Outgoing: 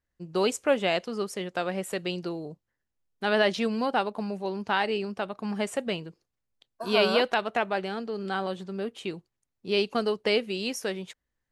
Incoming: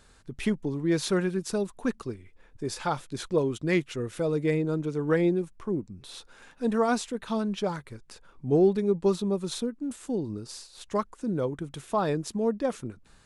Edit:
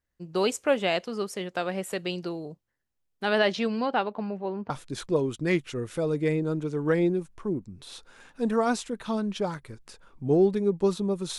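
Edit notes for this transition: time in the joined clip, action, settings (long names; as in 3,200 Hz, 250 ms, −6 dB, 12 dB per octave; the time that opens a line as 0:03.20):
outgoing
0:03.38–0:04.70: low-pass filter 8,800 Hz → 1,500 Hz
0:04.70: continue with incoming from 0:02.92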